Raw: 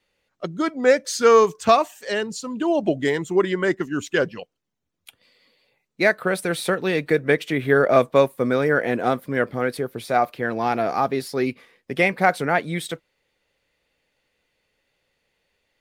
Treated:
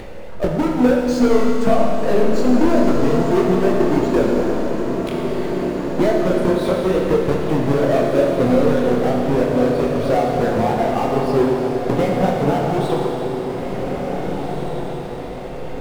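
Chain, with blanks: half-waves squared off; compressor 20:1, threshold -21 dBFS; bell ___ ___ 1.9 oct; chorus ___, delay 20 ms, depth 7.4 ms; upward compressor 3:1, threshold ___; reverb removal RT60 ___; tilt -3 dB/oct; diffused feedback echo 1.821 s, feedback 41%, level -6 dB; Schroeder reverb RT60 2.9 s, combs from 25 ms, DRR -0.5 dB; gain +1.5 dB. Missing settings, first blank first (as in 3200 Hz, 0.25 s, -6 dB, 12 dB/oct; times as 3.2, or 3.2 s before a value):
620 Hz, +6.5 dB, 2.4 Hz, -24 dBFS, 1.5 s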